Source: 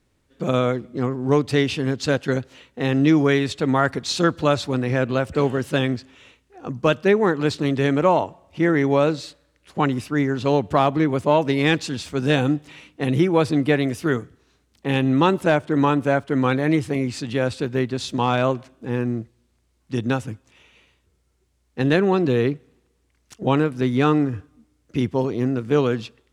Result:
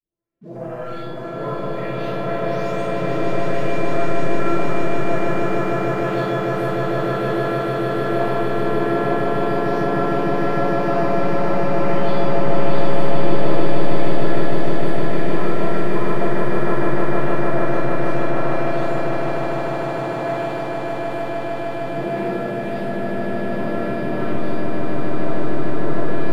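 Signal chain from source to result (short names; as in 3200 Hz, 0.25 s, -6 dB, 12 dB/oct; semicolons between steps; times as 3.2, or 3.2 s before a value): spectral delay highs late, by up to 0.921 s; treble ducked by the level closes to 1600 Hz, closed at -21.5 dBFS; HPF 72 Hz 6 dB/oct; sample leveller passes 2; harmoniser +4 st -3 dB; resonator 340 Hz, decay 0.79 s, mix 90%; swelling echo 0.152 s, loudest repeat 8, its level -4 dB; digital reverb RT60 1.2 s, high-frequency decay 0.3×, pre-delay 10 ms, DRR -4.5 dB; gain -2 dB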